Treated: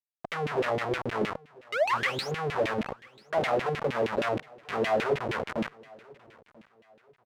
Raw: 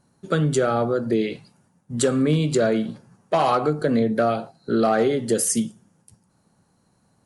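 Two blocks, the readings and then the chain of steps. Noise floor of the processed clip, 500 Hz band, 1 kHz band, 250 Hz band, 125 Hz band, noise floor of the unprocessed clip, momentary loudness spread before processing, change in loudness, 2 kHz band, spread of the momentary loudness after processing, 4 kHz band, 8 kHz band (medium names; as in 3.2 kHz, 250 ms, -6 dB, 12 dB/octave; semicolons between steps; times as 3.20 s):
-70 dBFS, -7.0 dB, -5.0 dB, -13.5 dB, -12.0 dB, -65 dBFS, 9 LU, -8.0 dB, +1.0 dB, 9 LU, -3.0 dB, -22.0 dB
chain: RIAA curve playback; in parallel at -11.5 dB: saturation -17 dBFS, distortion -9 dB; on the sum: static phaser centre 1.1 kHz, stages 6; painted sound rise, 1.72–2.32 s, 390–7300 Hz -18 dBFS; random-step tremolo; Schmitt trigger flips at -27 dBFS; LFO band-pass saw down 6.4 Hz 280–2800 Hz; on a send: feedback delay 989 ms, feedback 35%, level -24 dB; on the sum: trim +4 dB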